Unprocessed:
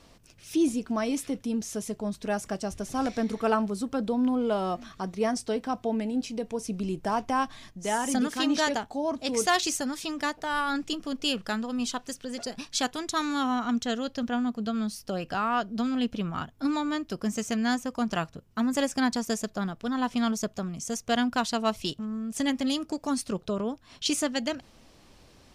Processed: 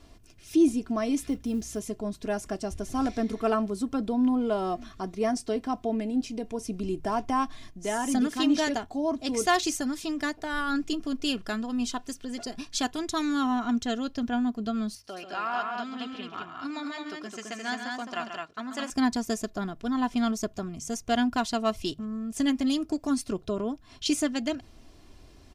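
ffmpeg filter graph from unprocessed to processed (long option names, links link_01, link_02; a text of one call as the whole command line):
ffmpeg -i in.wav -filter_complex "[0:a]asettb=1/sr,asplit=3[link_01][link_02][link_03];[link_01]atrim=end=1.214[link_04];[link_02]atrim=start=1.21:end=1.8,asetpts=PTS-STARTPTS,afade=type=in:duration=0.004:curve=qsin,afade=type=out:start_time=0.586:duration=0.004:curve=qsin,aeval=exprs='val(0)+0.002*(sin(2*PI*60*n/s)+sin(2*PI*2*60*n/s)/2+sin(2*PI*3*60*n/s)/3+sin(2*PI*4*60*n/s)/4+sin(2*PI*5*60*n/s)/5)':channel_layout=same,acrusher=bits=8:mode=log:mix=0:aa=0.000001[link_05];[link_03]atrim=start=1.796[link_06];[link_04][link_05]acrossfade=duration=0.004:curve1=hsin:curve2=qsin[link_07];[link_07][link_06]acrossfade=duration=0.004:curve1=qsin:curve2=hsin,asettb=1/sr,asplit=3[link_08][link_09][link_10];[link_08]atrim=end=14.954[link_11];[link_09]atrim=start=14.95:end=18.9,asetpts=PTS-STARTPTS,afade=type=in:duration=0.004:curve=qsin,afade=type=out:start_time=3.946:duration=0.004:curve=qsin,bandpass=frequency=2100:width_type=q:width=0.51,aecho=1:1:86|136|213:0.112|0.398|0.668,atrim=end_sample=174195[link_12];[link_10]atrim=start=18.896[link_13];[link_11][link_12]acrossfade=duration=0.004:curve1=hsin:curve2=qsin[link_14];[link_14][link_13]acrossfade=duration=0.004:curve1=qsin:curve2=hsin,lowshelf=frequency=270:gain=8,aecho=1:1:2.9:0.48,bandreject=frequency=50.69:width_type=h:width=4,bandreject=frequency=101.38:width_type=h:width=4,bandreject=frequency=152.07:width_type=h:width=4,volume=-3dB" out.wav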